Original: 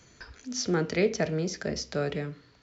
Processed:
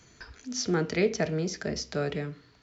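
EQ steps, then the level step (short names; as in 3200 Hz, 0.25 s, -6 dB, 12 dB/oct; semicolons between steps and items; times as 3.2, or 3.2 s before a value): notch 540 Hz, Q 12; 0.0 dB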